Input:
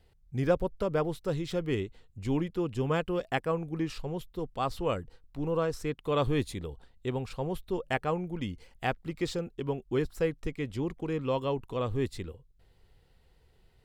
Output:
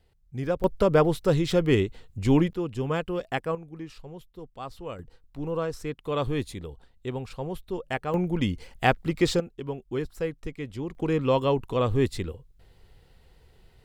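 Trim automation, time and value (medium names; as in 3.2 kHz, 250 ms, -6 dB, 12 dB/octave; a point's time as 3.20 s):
-1.5 dB
from 0.64 s +9 dB
from 2.53 s +1 dB
from 3.55 s -7 dB
from 4.99 s 0 dB
from 8.14 s +9 dB
from 9.40 s -1 dB
from 10.95 s +7 dB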